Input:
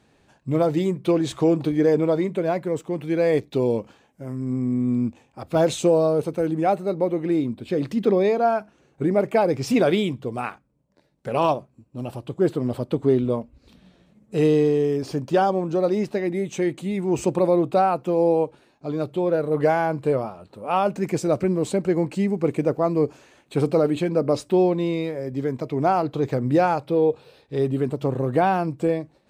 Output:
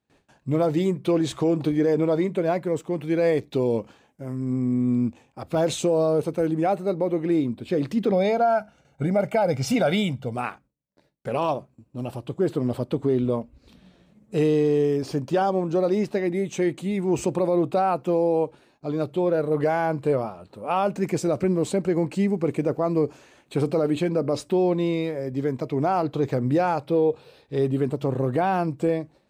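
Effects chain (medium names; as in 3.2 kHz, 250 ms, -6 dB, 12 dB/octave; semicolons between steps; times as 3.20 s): gate with hold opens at -50 dBFS; 8.11–10.35 s: comb 1.4 ms, depth 67%; peak limiter -13 dBFS, peak gain reduction 6.5 dB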